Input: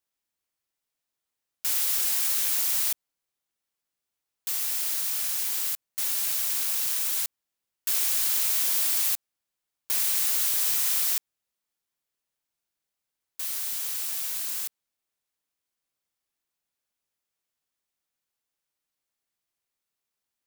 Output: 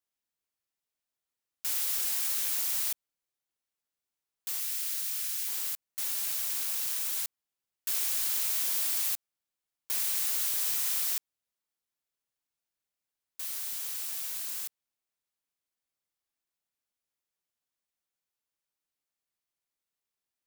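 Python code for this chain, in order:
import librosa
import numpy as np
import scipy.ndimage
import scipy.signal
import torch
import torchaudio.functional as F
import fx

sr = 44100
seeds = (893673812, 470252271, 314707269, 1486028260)

y = fx.highpass(x, sr, hz=1400.0, slope=12, at=(4.6, 5.46), fade=0.02)
y = y * librosa.db_to_amplitude(-5.0)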